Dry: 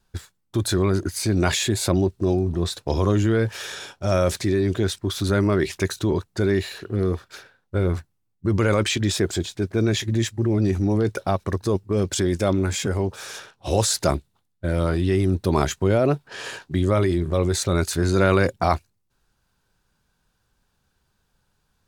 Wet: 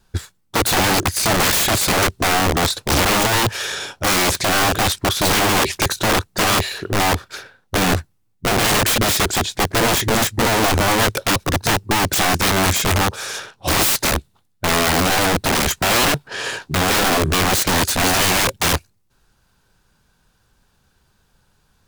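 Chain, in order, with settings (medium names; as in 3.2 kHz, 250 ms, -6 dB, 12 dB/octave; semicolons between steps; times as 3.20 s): integer overflow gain 20 dB; trim +8.5 dB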